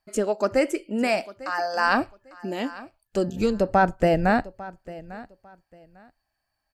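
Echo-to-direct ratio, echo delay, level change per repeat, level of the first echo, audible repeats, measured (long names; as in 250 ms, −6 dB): −18.5 dB, 849 ms, −13.0 dB, −18.5 dB, 2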